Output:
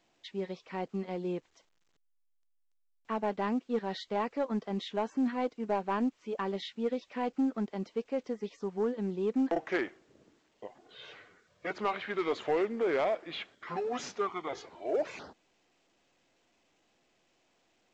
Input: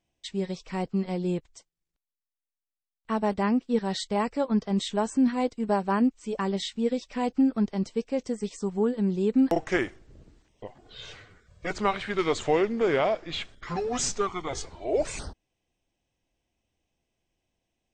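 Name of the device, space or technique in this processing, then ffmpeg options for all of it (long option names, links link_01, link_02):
telephone: -af "highpass=260,lowpass=3100,asoftclip=type=tanh:threshold=-18dB,volume=-3dB" -ar 16000 -c:a pcm_alaw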